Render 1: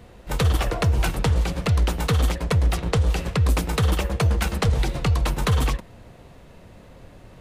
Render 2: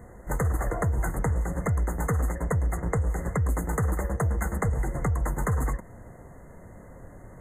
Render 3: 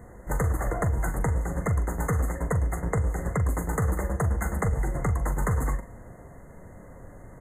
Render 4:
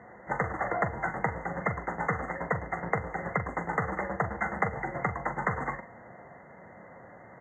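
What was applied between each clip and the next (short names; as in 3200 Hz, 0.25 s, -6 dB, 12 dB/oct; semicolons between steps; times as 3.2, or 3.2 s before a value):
FFT band-reject 2100–6300 Hz; compressor 2.5:1, threshold -25 dBFS, peak gain reduction 7 dB
doubler 42 ms -11 dB; on a send at -16.5 dB: reverb RT60 0.80 s, pre-delay 7 ms
speaker cabinet 200–4300 Hz, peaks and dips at 280 Hz -6 dB, 420 Hz -4 dB, 790 Hz +6 dB, 1400 Hz +3 dB, 2000 Hz +7 dB, 3900 Hz -4 dB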